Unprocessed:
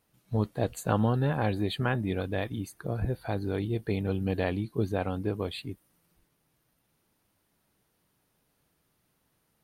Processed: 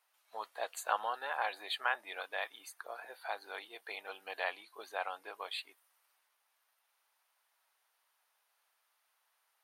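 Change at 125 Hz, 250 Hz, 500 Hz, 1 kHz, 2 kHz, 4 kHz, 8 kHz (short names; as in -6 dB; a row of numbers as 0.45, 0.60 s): under -40 dB, -34.0 dB, -12.5 dB, -1.5 dB, +0.5 dB, -1.0 dB, -3.0 dB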